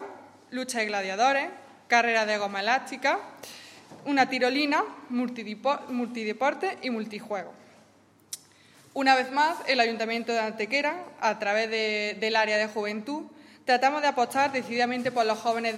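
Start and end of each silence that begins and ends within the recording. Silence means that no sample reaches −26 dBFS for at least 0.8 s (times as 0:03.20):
0:07.41–0:08.33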